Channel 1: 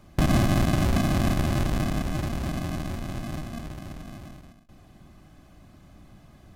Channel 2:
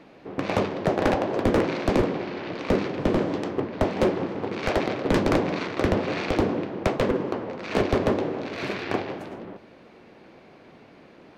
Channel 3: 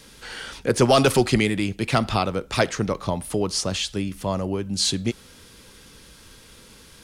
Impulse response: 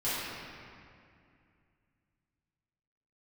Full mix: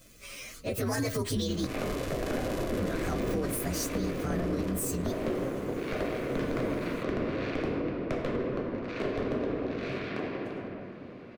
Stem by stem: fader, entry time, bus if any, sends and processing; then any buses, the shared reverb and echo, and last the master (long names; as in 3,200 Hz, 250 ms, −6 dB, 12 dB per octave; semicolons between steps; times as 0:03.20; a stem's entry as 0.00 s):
−16.5 dB, 1.30 s, no send, guitar amp tone stack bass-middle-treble 10-0-10; automatic gain control gain up to 11 dB
−2.5 dB, 1.25 s, send −7.5 dB, downward compressor 1.5 to 1, threshold −43 dBFS, peak gain reduction 9.5 dB; high-shelf EQ 3,300 Hz −7.5 dB
−2.5 dB, 0.00 s, muted 0:01.67–0:02.77, no send, partials spread apart or drawn together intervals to 124%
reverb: on, RT60 2.4 s, pre-delay 3 ms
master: parametric band 850 Hz −11.5 dB 0.25 octaves; brickwall limiter −22 dBFS, peak gain reduction 10.5 dB